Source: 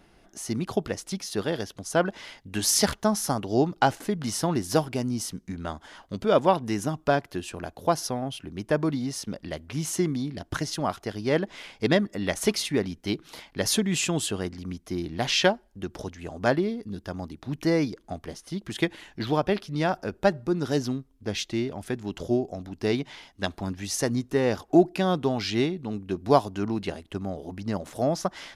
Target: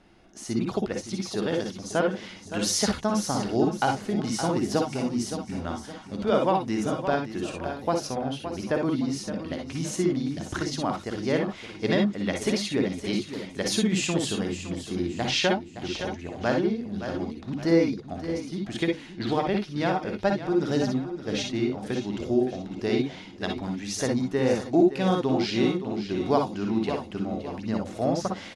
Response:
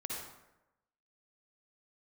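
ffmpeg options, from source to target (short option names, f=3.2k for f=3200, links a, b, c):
-filter_complex "[0:a]lowpass=7.5k,bandreject=f=50:t=h:w=6,bandreject=f=100:t=h:w=6,bandreject=f=150:t=h:w=6,aecho=1:1:567|1134|1701|2268:0.266|0.104|0.0405|0.0158,asplit=2[a][b];[b]alimiter=limit=-14.5dB:level=0:latency=1:release=392,volume=-2dB[c];[a][c]amix=inputs=2:normalize=0[d];[1:a]atrim=start_sample=2205,atrim=end_sample=3087[e];[d][e]afir=irnorm=-1:irlink=0,volume=-2.5dB"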